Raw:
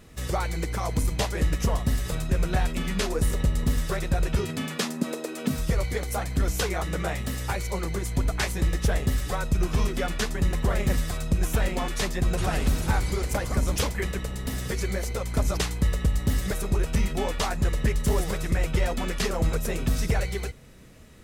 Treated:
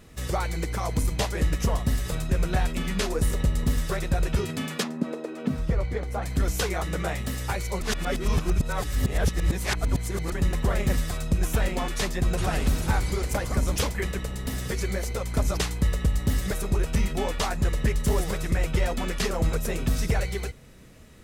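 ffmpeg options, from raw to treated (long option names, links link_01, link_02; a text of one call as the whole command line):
ffmpeg -i in.wav -filter_complex "[0:a]asplit=3[link_01][link_02][link_03];[link_01]afade=type=out:start_time=4.82:duration=0.02[link_04];[link_02]lowpass=frequency=1400:poles=1,afade=type=in:start_time=4.82:duration=0.02,afade=type=out:start_time=6.22:duration=0.02[link_05];[link_03]afade=type=in:start_time=6.22:duration=0.02[link_06];[link_04][link_05][link_06]amix=inputs=3:normalize=0,asplit=3[link_07][link_08][link_09];[link_07]atrim=end=7.812[link_10];[link_08]atrim=start=7.808:end=10.322,asetpts=PTS-STARTPTS,areverse[link_11];[link_09]atrim=start=10.318[link_12];[link_10][link_11]acrossfade=duration=0.004:curve1=hsin:curve2=hsin[link_13];[link_13][link_12]acrossfade=duration=0.004:curve1=hsin:curve2=hsin" out.wav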